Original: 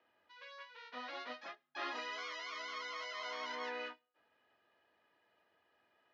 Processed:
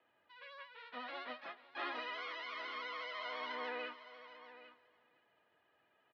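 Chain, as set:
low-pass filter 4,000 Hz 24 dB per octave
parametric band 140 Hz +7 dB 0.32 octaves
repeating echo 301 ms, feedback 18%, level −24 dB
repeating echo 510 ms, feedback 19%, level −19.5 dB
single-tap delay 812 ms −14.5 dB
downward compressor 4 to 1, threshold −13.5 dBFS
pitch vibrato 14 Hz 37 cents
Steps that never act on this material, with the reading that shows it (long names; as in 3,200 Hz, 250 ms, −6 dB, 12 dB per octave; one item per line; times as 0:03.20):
downward compressor, threshold −13.5 dBFS: peak of its input −29.0 dBFS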